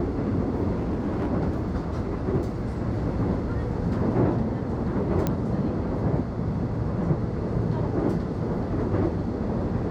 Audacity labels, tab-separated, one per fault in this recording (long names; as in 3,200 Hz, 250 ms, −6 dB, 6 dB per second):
0.740000	1.310000	clipping −23 dBFS
5.270000	5.270000	click −11 dBFS